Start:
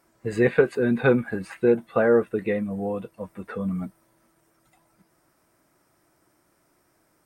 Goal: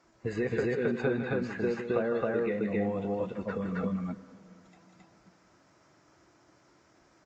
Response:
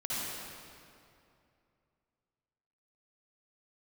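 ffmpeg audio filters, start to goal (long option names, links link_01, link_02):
-filter_complex "[0:a]acrossover=split=660|2100[link_01][link_02][link_03];[link_01]acompressor=threshold=-32dB:ratio=4[link_04];[link_02]acompressor=threshold=-43dB:ratio=4[link_05];[link_03]acompressor=threshold=-52dB:ratio=4[link_06];[link_04][link_05][link_06]amix=inputs=3:normalize=0,aecho=1:1:160.3|268.2:0.355|1,asplit=2[link_07][link_08];[1:a]atrim=start_sample=2205,adelay=62[link_09];[link_08][link_09]afir=irnorm=-1:irlink=0,volume=-22.5dB[link_10];[link_07][link_10]amix=inputs=2:normalize=0" -ar 16000 -c:a libvorbis -b:a 48k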